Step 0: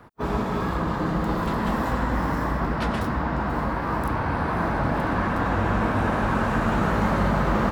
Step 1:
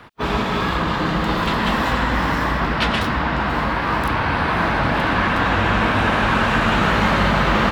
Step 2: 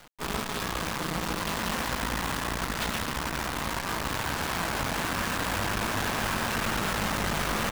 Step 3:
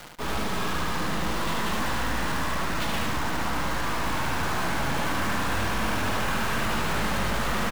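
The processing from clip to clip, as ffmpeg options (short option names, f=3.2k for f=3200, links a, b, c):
-af "equalizer=f=3.1k:t=o:w=1.8:g=13.5,volume=3dB"
-af "acrusher=bits=4:dc=4:mix=0:aa=0.000001,aeval=exprs='(tanh(14.1*val(0)+0.6)-tanh(0.6))/14.1':c=same,volume=-2.5dB"
-af "aeval=exprs='0.0841*sin(PI/2*1.78*val(0)/0.0841)':c=same,aecho=1:1:74|148|222:0.708|0.142|0.0283"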